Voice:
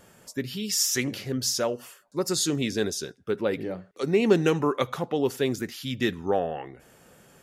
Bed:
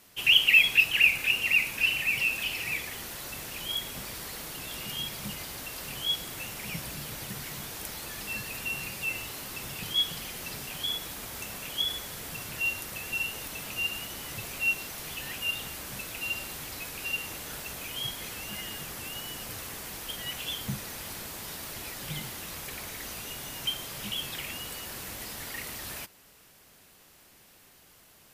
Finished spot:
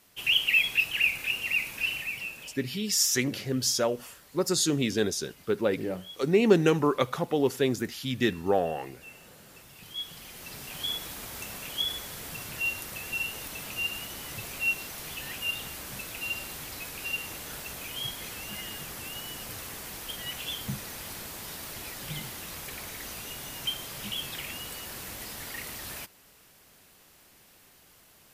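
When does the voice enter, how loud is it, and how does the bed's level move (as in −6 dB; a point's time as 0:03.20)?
2.20 s, 0.0 dB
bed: 0:01.95 −4 dB
0:02.61 −16.5 dB
0:09.38 −16.5 dB
0:10.85 −0.5 dB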